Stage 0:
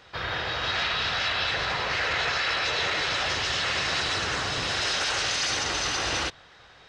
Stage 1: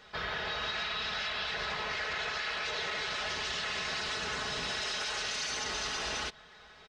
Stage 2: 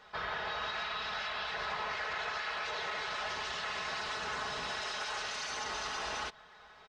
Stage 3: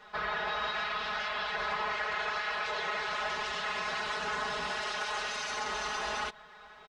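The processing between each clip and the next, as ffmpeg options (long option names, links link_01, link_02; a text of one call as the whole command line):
ffmpeg -i in.wav -af "aecho=1:1:4.7:0.66,acompressor=threshold=-28dB:ratio=6,volume=-4dB" out.wav
ffmpeg -i in.wav -af "equalizer=frequency=960:width=0.88:gain=8.5,volume=-6dB" out.wav
ffmpeg -i in.wav -af "aecho=1:1:4.8:0.93" out.wav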